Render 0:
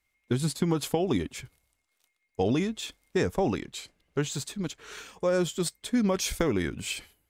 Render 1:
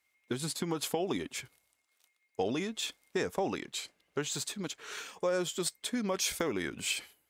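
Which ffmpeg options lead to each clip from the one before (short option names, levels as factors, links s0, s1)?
-af "acompressor=threshold=0.0355:ratio=2,highpass=f=420:p=1,volume=1.19"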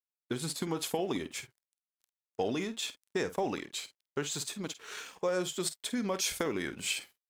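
-filter_complex "[0:a]aeval=exprs='sgn(val(0))*max(abs(val(0))-0.00119,0)':c=same,asplit=2[s0][s1];[s1]adelay=49,volume=0.224[s2];[s0][s2]amix=inputs=2:normalize=0"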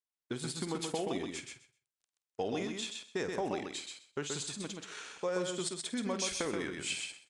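-filter_complex "[0:a]asplit=2[s0][s1];[s1]aecho=0:1:128|256|384:0.596|0.0953|0.0152[s2];[s0][s2]amix=inputs=2:normalize=0,aresample=22050,aresample=44100,volume=0.668"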